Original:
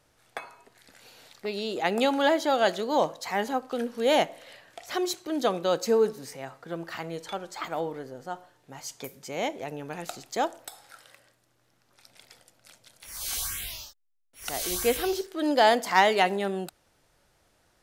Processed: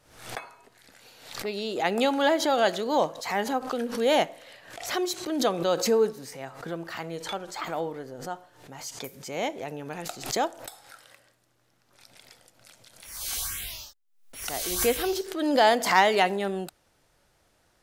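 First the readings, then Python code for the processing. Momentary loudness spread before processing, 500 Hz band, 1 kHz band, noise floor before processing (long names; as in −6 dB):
19 LU, +0.5 dB, +0.5 dB, −68 dBFS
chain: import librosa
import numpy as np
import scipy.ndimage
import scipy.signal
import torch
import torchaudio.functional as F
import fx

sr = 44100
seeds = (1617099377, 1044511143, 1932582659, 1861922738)

y = fx.pre_swell(x, sr, db_per_s=88.0)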